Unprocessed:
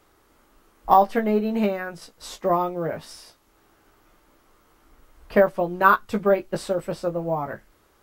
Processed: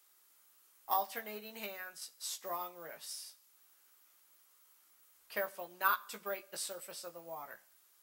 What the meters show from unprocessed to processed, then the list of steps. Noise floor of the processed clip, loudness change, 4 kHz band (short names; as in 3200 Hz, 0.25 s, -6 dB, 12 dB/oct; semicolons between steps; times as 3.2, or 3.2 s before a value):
-68 dBFS, -17.0 dB, -5.0 dB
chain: differentiator; Schroeder reverb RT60 0.67 s, combs from 30 ms, DRR 19.5 dB